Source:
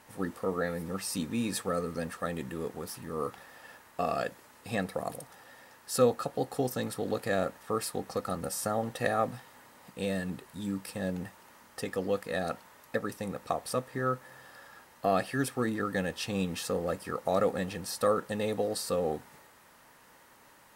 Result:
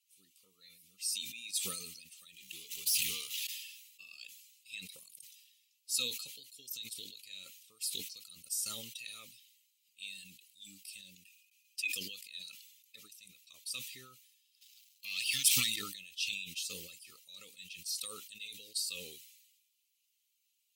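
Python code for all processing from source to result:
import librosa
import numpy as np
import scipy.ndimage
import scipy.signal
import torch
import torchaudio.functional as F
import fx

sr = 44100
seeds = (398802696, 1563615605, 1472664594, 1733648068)

y = fx.chain(x, sr, fx.over_compress(threshold_db=-47.0, ratio=-1.0),
    fx.leveller(passes=5), at=(2.34, 3.47))
y = fx.chain(y, sr, fx.small_body(hz=(300.0, 2500.0), ring_ms=30, db=15),
    fx.gate_hold(open_db=-42.0, close_db=-47.0, hold_ms=71.0, range_db=-21, attack_ms=1.4, release_ms=100.0),
    fx.tilt_shelf(db=-4.0, hz=1100.0), at=(11.25, 11.95))
y = fx.chain(y, sr, fx.peak_eq(hz=390.0, db=-13.0, octaves=1.2),
    fx.leveller(passes=3), at=(14.61, 15.76))
y = fx.bin_expand(y, sr, power=1.5)
y = scipy.signal.sosfilt(scipy.signal.ellip(4, 1.0, 40, 2600.0, 'highpass', fs=sr, output='sos'), y)
y = fx.sustainer(y, sr, db_per_s=49.0)
y = y * librosa.db_to_amplitude(4.0)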